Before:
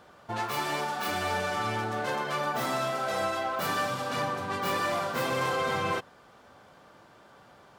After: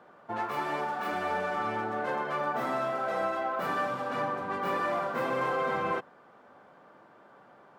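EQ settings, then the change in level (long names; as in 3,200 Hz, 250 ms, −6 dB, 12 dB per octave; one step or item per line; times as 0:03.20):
three-way crossover with the lows and the highs turned down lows −17 dB, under 150 Hz, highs −15 dB, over 2,200 Hz
0.0 dB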